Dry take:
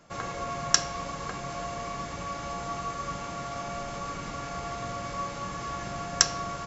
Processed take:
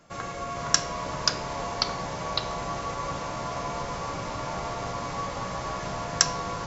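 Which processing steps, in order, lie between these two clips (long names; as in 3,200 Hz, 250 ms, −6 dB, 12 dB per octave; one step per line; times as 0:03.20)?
delay with pitch and tempo change per echo 441 ms, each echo −2 semitones, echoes 3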